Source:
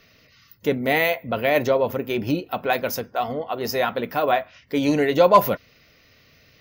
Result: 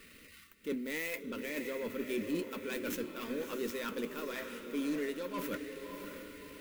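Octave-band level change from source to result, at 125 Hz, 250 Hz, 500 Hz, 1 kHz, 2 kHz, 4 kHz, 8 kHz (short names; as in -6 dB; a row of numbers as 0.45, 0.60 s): -21.0, -11.5, -17.5, -25.0, -14.5, -14.0, -8.0 dB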